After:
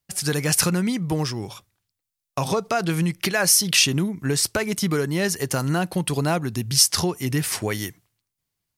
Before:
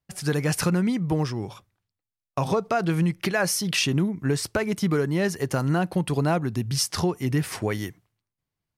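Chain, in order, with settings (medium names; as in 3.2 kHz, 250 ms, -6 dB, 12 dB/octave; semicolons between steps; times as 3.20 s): treble shelf 3 kHz +11.5 dB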